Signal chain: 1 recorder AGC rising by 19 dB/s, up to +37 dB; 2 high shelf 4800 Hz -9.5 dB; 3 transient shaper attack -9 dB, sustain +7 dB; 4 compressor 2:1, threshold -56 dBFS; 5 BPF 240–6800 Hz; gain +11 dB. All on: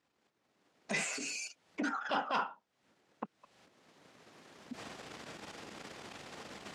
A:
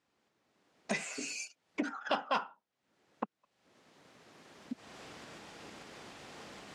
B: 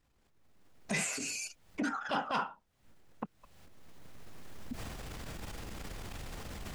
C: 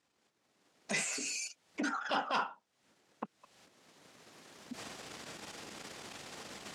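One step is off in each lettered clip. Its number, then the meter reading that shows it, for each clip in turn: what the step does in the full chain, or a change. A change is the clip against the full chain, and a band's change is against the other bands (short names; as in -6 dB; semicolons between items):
3, crest factor change +5.0 dB; 5, 125 Hz band +9.5 dB; 2, 8 kHz band +4.0 dB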